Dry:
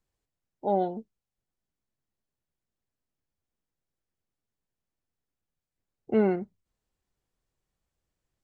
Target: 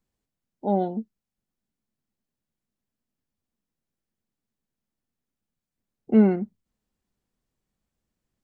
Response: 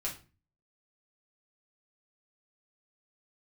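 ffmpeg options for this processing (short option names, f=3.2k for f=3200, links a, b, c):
-af "equalizer=f=220:w=2.1:g=10"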